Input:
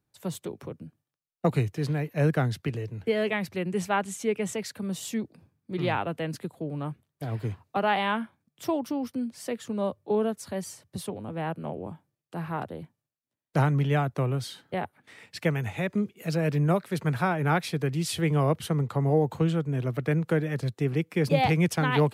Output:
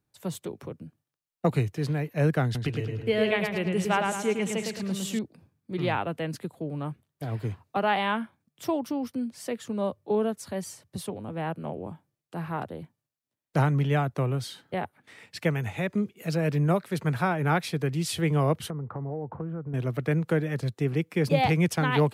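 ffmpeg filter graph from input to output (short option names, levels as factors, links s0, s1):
-filter_complex "[0:a]asettb=1/sr,asplit=3[s0][s1][s2];[s0]atrim=end=2.444[s3];[s1]atrim=start=2.44:end=5.19,asetpts=PTS-STARTPTS,afade=t=in:d=0.004:c=qsin,afade=t=out:st=2.746:d=0.004:c=qsin,equalizer=f=2900:w=2.2:g=4,asplit=2[s4][s5];[s5]adelay=108,lowpass=f=4900:p=1,volume=0.668,asplit=2[s6][s7];[s7]adelay=108,lowpass=f=4900:p=1,volume=0.47,asplit=2[s8][s9];[s9]adelay=108,lowpass=f=4900:p=1,volume=0.47,asplit=2[s10][s11];[s11]adelay=108,lowpass=f=4900:p=1,volume=0.47,asplit=2[s12][s13];[s13]adelay=108,lowpass=f=4900:p=1,volume=0.47,asplit=2[s14][s15];[s15]adelay=108,lowpass=f=4900:p=1,volume=0.47[s16];[s4][s6][s8][s10][s12][s14][s16]amix=inputs=7:normalize=0,atrim=end_sample=121275[s17];[s2]atrim=start=5.186[s18];[s3][s17]acrossfade=d=0.004:c1=hsin:c2=qsin[s19];[s19][s18]acrossfade=d=0.004:c1=qsin:c2=hsin,asettb=1/sr,asplit=3[s20][s21][s22];[s20]atrim=end=18.704[s23];[s21]atrim=start=18.7:end=19.74,asetpts=PTS-STARTPTS,afade=t=in:d=0.004:c=qsin,afade=t=out:st=1.036:d=0.004:c=qsin,lowpass=f=1500:w=0.5412,lowpass=f=1500:w=1.3066,acompressor=threshold=0.0282:ratio=5:attack=3.2:release=140:knee=1:detection=peak[s24];[s22]atrim=start=19.736[s25];[s23][s24]acrossfade=d=0.004:c1=hsin:c2=qsin[s26];[s26][s25]acrossfade=d=0.004:c1=qsin:c2=hsin"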